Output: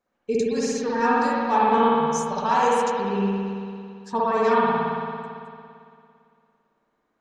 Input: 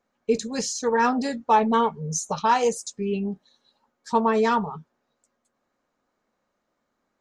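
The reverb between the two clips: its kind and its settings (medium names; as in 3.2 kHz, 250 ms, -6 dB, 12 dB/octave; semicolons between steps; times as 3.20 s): spring tank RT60 2.4 s, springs 56 ms, chirp 70 ms, DRR -6.5 dB; trim -5 dB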